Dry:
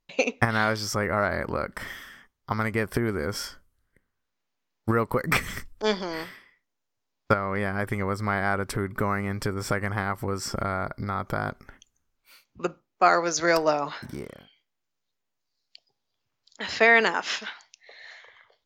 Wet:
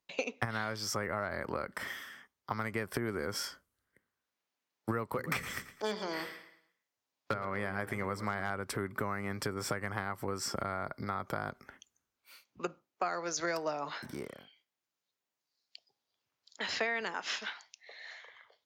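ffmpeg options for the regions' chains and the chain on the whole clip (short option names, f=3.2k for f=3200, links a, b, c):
-filter_complex "[0:a]asettb=1/sr,asplit=3[a][b][c];[a]atrim=end=5.134[d];[b]atrim=start=5.13:end=8.5,asetpts=PTS-STARTPTS,afade=t=in:d=0.004:c=qsin,afade=t=out:st=3.366:d=0.004:c=qsin,bandreject=f=60:t=h:w=6,bandreject=f=120:t=h:w=6,bandreject=f=180:t=h:w=6,bandreject=f=240:t=h:w=6,bandreject=f=300:t=h:w=6,bandreject=f=360:t=h:w=6,bandreject=f=420:t=h:w=6,bandreject=f=480:t=h:w=6,volume=15dB,asoftclip=hard,volume=-15dB,aecho=1:1:112|224|336|448:0.158|0.0634|0.0254|0.0101,atrim=end_sample=148617[e];[c]atrim=start=8.496[f];[d][e]acrossfade=d=0.004:c1=hsin:c2=qsin[g];[g][f]acrossfade=d=0.004:c1=qsin:c2=hsin,highpass=56,lowshelf=f=150:g=-11.5,acrossover=split=150[h][i];[i]acompressor=threshold=-29dB:ratio=6[j];[h][j]amix=inputs=2:normalize=0,volume=-2.5dB"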